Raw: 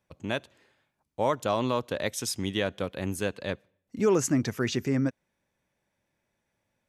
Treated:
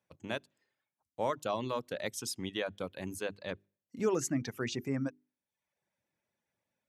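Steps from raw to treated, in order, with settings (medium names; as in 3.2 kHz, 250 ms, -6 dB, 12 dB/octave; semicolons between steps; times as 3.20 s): high-pass 90 Hz; hum notches 50/100/150/200/250/300/350/400 Hz; reverb removal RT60 0.7 s; trim -6 dB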